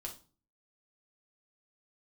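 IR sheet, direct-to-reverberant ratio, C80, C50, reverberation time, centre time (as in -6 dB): -0.5 dB, 17.0 dB, 10.5 dB, 0.35 s, 15 ms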